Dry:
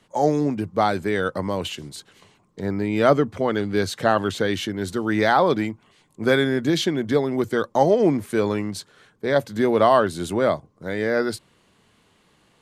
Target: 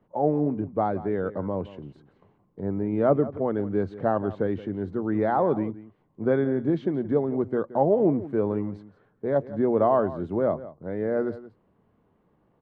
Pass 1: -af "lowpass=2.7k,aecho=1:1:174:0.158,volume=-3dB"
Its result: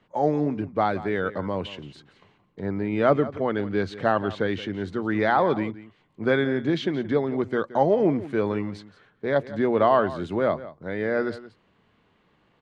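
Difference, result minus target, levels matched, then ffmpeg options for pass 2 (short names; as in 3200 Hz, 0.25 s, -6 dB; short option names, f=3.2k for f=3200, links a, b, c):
2000 Hz band +10.0 dB
-af "lowpass=850,aecho=1:1:174:0.158,volume=-3dB"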